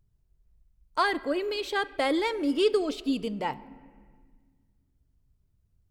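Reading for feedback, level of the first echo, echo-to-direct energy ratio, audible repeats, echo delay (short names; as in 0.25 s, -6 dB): none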